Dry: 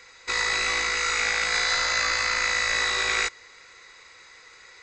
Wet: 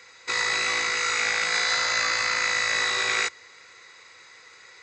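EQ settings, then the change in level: HPF 84 Hz 24 dB/oct; 0.0 dB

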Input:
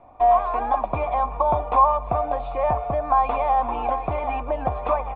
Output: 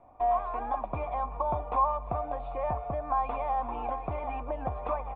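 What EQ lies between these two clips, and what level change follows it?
dynamic EQ 640 Hz, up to -3 dB, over -26 dBFS, Q 0.74; high shelf 3300 Hz -10.5 dB; -6.5 dB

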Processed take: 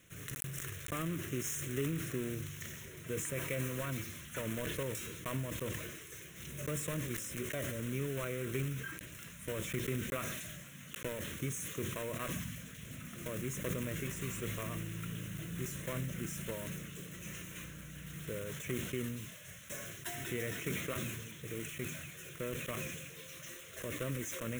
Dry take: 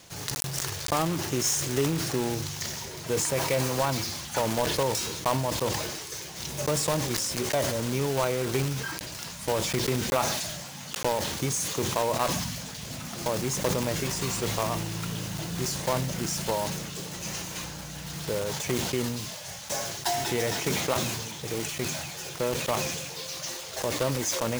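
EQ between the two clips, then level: fixed phaser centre 2000 Hz, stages 4; -7.5 dB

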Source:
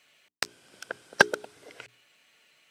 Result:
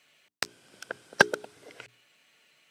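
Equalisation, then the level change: HPF 86 Hz; low shelf 210 Hz +4.5 dB; -1.0 dB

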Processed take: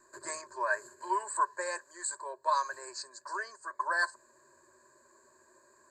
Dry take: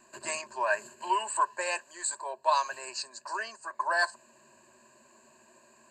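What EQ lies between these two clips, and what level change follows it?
high shelf 7800 Hz -4.5 dB; fixed phaser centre 750 Hz, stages 6; 0.0 dB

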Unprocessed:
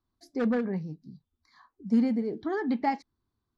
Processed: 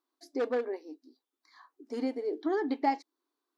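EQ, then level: dynamic EQ 1600 Hz, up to -5 dB, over -48 dBFS, Q 1; brick-wall FIR high-pass 260 Hz; +1.5 dB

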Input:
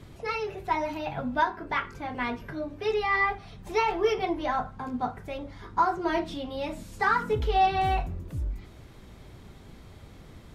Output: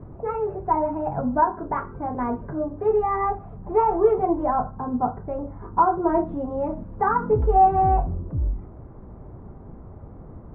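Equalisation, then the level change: LPF 1100 Hz 24 dB/oct; +7.0 dB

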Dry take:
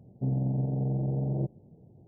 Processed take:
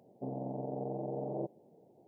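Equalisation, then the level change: HPF 470 Hz 12 dB/oct; +4.5 dB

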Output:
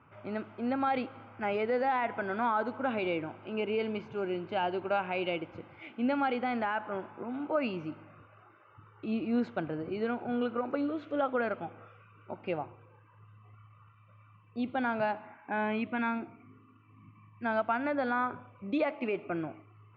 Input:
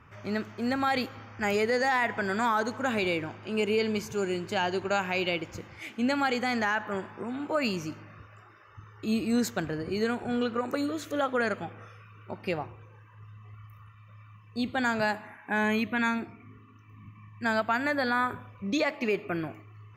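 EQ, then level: speaker cabinet 160–2600 Hz, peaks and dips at 200 Hz -6 dB, 420 Hz -5 dB, 1100 Hz -4 dB, 2400 Hz -3 dB; bell 1800 Hz -13.5 dB 0.31 oct; 0.0 dB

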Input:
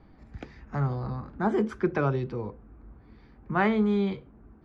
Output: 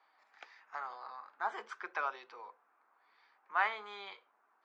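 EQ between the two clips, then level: ladder high-pass 750 Hz, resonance 30%; air absorption 110 m; high shelf 4000 Hz +11.5 dB; +1.0 dB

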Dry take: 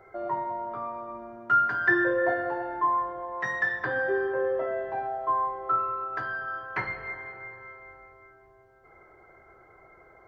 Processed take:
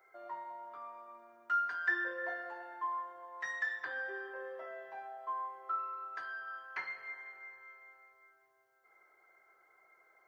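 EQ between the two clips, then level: differentiator; bell 94 Hz -4.5 dB 1.1 oct; high shelf 3000 Hz -7 dB; +5.0 dB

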